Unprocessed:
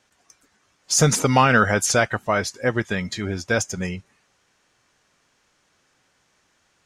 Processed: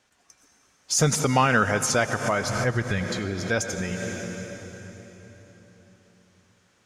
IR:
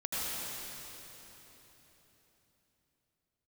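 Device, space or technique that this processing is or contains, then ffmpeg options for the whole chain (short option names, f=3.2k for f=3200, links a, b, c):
ducked reverb: -filter_complex "[0:a]asplit=3[a][b][c];[1:a]atrim=start_sample=2205[d];[b][d]afir=irnorm=-1:irlink=0[e];[c]apad=whole_len=302103[f];[e][f]sidechaincompress=threshold=-30dB:ratio=5:attack=8.5:release=132,volume=-6dB[g];[a][g]amix=inputs=2:normalize=0,asplit=3[h][i][j];[h]afade=t=out:st=2.47:d=0.02[k];[i]asubboost=boost=4:cutoff=140,afade=t=in:st=2.47:d=0.02,afade=t=out:st=3.03:d=0.02[l];[j]afade=t=in:st=3.03:d=0.02[m];[k][l][m]amix=inputs=3:normalize=0,volume=-4.5dB"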